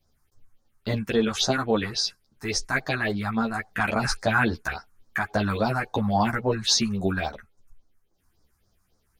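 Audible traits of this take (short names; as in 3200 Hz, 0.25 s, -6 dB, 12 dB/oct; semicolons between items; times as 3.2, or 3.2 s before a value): phasing stages 4, 3.6 Hz, lowest notch 480–2800 Hz; random-step tremolo 1.1 Hz; a shimmering, thickened sound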